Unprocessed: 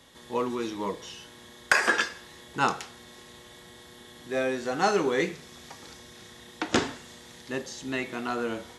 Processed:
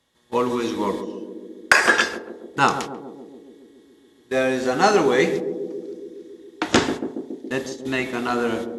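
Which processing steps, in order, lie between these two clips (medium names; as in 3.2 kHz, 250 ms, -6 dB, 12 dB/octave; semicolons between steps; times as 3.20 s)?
gate -38 dBFS, range -20 dB; on a send: band-passed feedback delay 139 ms, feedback 79%, band-pass 320 Hz, level -7 dB; on the sum: trim +7 dB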